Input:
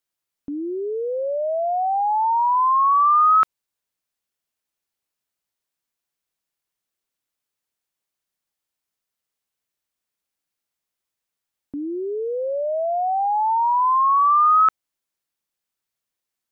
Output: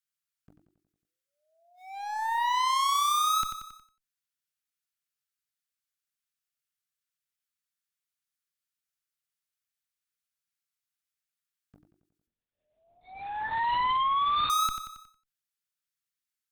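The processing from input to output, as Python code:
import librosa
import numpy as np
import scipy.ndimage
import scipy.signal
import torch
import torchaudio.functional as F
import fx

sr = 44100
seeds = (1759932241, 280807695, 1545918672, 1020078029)

y = scipy.signal.sosfilt(scipy.signal.ellip(3, 1.0, 70, [170.0, 1300.0], 'bandstop', fs=sr, output='sos'), x)
y = fx.low_shelf(y, sr, hz=97.0, db=-6.5)
y = fx.hum_notches(y, sr, base_hz=50, count=5)
y = fx.leveller(y, sr, passes=3)
y = fx.clip_asym(y, sr, top_db=-36.5, bottom_db=-21.0)
y = fx.echo_feedback(y, sr, ms=91, feedback_pct=53, wet_db=-10)
y = fx.lpc_vocoder(y, sr, seeds[0], excitation='whisper', order=8, at=(12.27, 14.5))
y = fx.end_taper(y, sr, db_per_s=140.0)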